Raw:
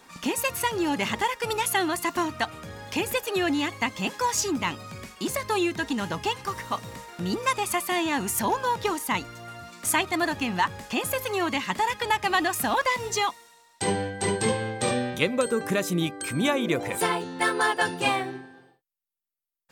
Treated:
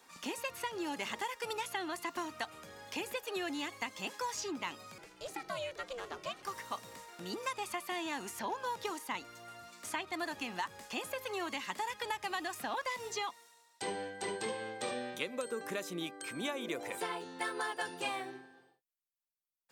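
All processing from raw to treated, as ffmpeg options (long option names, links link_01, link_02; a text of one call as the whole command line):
ffmpeg -i in.wav -filter_complex "[0:a]asettb=1/sr,asplit=3[link_01][link_02][link_03];[link_01]atrim=end=4.984[link_04];[link_02]atrim=start=4.98:end=6.43,asetpts=PTS-STARTPTS,afade=type=in:duration=0.004:curve=qsin,afade=type=out:start_time=1.446:duration=0.004:curve=qsin,highshelf=frequency=6300:gain=-9,aeval=exprs='val(0)+0.00398*(sin(2*PI*60*n/s)+sin(2*PI*2*60*n/s)/2+sin(2*PI*3*60*n/s)/3+sin(2*PI*4*60*n/s)/4+sin(2*PI*5*60*n/s)/5)':channel_layout=same,aeval=exprs='val(0)*sin(2*PI*250*n/s)':channel_layout=same[link_05];[link_03]atrim=start=6.426[link_06];[link_04][link_05]acrossfade=duration=0.004:curve1=hsin:curve2=qsin[link_07];[link_07][link_06]acrossfade=duration=0.004:curve1=qsin:curve2=hsin,bass=frequency=250:gain=-8,treble=frequency=4000:gain=3,acrossover=split=170|5100[link_08][link_09][link_10];[link_08]acompressor=threshold=-55dB:ratio=4[link_11];[link_09]acompressor=threshold=-25dB:ratio=4[link_12];[link_10]acompressor=threshold=-42dB:ratio=4[link_13];[link_11][link_12][link_13]amix=inputs=3:normalize=0,volume=-9dB" out.wav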